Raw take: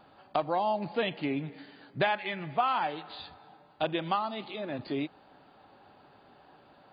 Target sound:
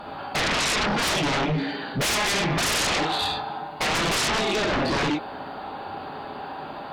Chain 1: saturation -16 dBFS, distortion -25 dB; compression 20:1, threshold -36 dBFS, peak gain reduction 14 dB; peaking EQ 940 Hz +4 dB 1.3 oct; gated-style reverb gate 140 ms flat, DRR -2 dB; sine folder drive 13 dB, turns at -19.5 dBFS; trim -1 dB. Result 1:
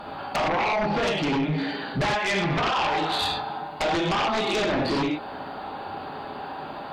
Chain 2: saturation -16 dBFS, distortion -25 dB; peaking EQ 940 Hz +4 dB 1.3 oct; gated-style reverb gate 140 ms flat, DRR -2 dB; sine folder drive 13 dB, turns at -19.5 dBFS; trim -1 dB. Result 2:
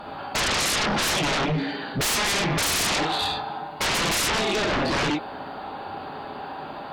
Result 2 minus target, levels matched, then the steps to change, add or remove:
saturation: distortion -13 dB
change: saturation -25.5 dBFS, distortion -12 dB

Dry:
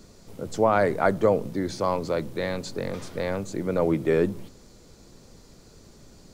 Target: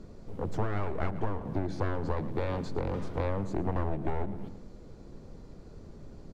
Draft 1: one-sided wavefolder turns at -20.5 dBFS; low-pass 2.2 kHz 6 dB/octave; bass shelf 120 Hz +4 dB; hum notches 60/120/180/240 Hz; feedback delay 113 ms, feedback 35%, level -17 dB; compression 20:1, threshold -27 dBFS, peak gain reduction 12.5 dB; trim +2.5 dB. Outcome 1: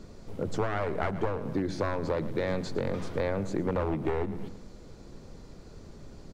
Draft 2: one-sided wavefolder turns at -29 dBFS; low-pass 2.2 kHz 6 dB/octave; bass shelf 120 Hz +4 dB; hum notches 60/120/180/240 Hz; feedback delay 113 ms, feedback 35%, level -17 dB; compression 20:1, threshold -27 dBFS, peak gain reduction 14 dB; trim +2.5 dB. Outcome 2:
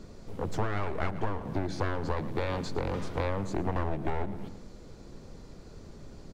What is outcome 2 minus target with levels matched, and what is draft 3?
2 kHz band +4.0 dB
one-sided wavefolder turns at -29 dBFS; low-pass 840 Hz 6 dB/octave; bass shelf 120 Hz +4 dB; hum notches 60/120/180/240 Hz; feedback delay 113 ms, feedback 35%, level -17 dB; compression 20:1, threshold -27 dBFS, peak gain reduction 13.5 dB; trim +2.5 dB

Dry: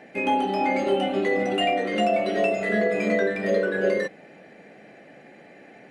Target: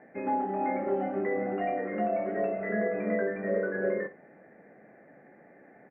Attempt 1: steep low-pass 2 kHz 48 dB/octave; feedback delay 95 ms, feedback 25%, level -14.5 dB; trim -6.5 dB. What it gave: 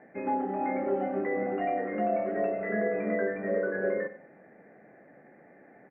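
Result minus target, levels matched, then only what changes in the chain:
echo 39 ms late
change: feedback delay 56 ms, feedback 25%, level -14.5 dB

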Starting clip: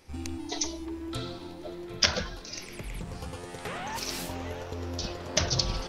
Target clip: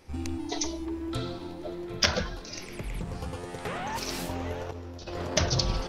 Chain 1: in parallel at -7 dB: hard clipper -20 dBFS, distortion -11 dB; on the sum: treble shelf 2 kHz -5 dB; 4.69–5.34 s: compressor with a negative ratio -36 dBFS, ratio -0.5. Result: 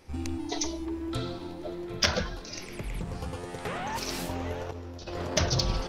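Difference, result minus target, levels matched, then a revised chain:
hard clipper: distortion +11 dB
in parallel at -7 dB: hard clipper -11 dBFS, distortion -22 dB; on the sum: treble shelf 2 kHz -5 dB; 4.69–5.34 s: compressor with a negative ratio -36 dBFS, ratio -0.5

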